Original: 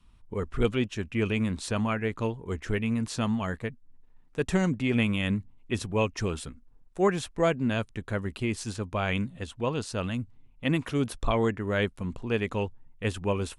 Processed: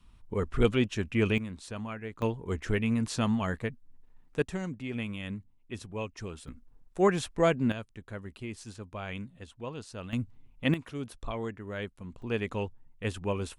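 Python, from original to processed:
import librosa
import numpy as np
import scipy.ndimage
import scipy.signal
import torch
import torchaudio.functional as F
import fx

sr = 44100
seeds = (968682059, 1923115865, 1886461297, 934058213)

y = fx.gain(x, sr, db=fx.steps((0.0, 1.0), (1.38, -10.0), (2.22, 0.0), (4.42, -10.0), (6.48, 0.0), (7.72, -10.0), (10.13, 0.5), (10.74, -10.0), (12.22, -3.5)))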